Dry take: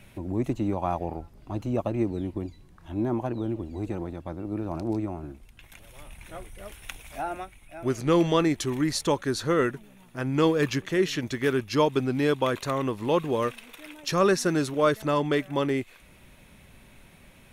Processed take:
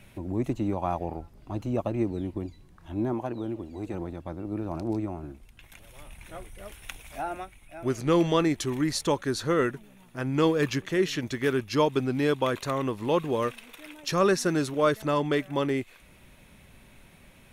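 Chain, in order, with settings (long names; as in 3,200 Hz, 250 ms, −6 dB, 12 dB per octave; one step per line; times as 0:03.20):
0:03.12–0:03.94: low-shelf EQ 160 Hz −7.5 dB
level −1 dB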